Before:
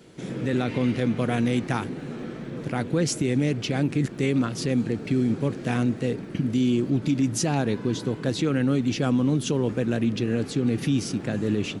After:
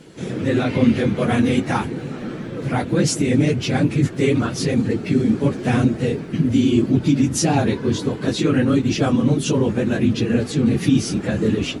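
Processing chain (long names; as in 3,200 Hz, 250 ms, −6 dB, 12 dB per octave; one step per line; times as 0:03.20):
random phases in long frames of 50 ms
level +6 dB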